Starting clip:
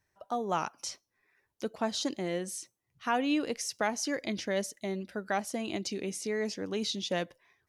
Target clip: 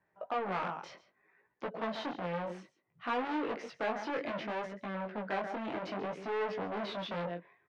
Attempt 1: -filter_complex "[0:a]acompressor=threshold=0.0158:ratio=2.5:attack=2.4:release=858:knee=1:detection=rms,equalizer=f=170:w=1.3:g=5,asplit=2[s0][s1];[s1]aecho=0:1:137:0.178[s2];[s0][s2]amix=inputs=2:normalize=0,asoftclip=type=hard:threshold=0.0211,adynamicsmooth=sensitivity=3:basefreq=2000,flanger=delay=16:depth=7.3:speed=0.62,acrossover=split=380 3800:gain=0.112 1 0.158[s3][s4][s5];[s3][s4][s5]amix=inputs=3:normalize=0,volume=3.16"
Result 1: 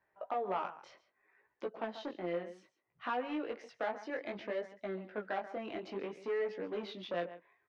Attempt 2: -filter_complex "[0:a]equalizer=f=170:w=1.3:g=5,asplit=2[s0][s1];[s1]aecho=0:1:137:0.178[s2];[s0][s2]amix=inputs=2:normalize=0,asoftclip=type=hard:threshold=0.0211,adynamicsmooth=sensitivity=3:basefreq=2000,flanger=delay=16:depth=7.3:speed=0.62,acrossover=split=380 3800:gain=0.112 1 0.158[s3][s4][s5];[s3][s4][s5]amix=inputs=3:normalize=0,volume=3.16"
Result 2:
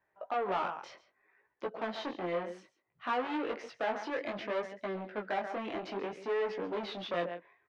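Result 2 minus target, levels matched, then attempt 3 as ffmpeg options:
125 Hz band -5.5 dB
-filter_complex "[0:a]equalizer=f=170:w=1.3:g=16,asplit=2[s0][s1];[s1]aecho=0:1:137:0.178[s2];[s0][s2]amix=inputs=2:normalize=0,asoftclip=type=hard:threshold=0.0211,adynamicsmooth=sensitivity=3:basefreq=2000,flanger=delay=16:depth=7.3:speed=0.62,acrossover=split=380 3800:gain=0.112 1 0.158[s3][s4][s5];[s3][s4][s5]amix=inputs=3:normalize=0,volume=3.16"

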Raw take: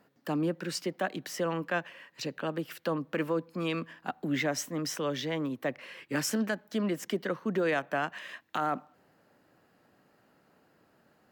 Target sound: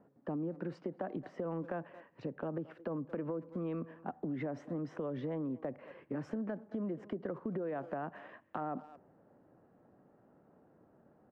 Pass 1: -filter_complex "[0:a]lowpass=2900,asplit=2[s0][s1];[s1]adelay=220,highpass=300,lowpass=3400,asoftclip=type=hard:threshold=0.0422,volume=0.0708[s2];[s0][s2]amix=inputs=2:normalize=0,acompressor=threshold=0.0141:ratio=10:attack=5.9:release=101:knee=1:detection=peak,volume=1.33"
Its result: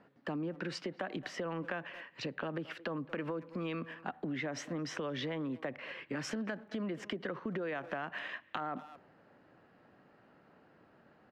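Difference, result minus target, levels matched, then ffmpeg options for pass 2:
4 kHz band +19.0 dB
-filter_complex "[0:a]lowpass=790,asplit=2[s0][s1];[s1]adelay=220,highpass=300,lowpass=3400,asoftclip=type=hard:threshold=0.0422,volume=0.0708[s2];[s0][s2]amix=inputs=2:normalize=0,acompressor=threshold=0.0141:ratio=10:attack=5.9:release=101:knee=1:detection=peak,volume=1.33"

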